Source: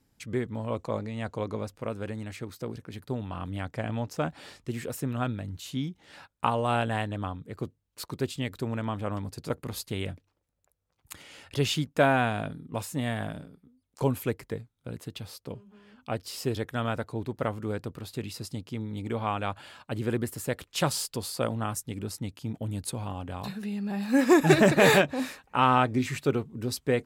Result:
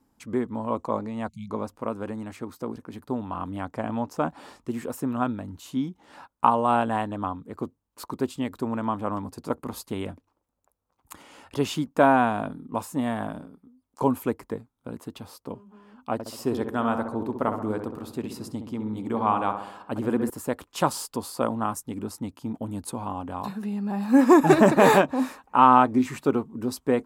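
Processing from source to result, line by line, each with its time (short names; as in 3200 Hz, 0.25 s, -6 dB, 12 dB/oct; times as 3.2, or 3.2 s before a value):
1.28–1.5 spectral delete 220–2100 Hz
16.13–20.3 darkening echo 65 ms, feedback 61%, low-pass 1600 Hz, level -6.5 dB
whole clip: graphic EQ 125/250/1000/2000/4000 Hz -6/+8/+11/-4/-4 dB; gain -1 dB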